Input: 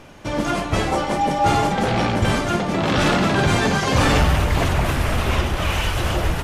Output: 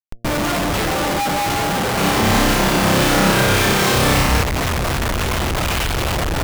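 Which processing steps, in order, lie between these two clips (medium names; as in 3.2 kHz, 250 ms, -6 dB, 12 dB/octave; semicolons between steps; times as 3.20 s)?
Schmitt trigger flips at -33 dBFS; de-hum 116.1 Hz, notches 6; 1.94–4.43 s: flutter echo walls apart 5.3 m, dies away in 0.92 s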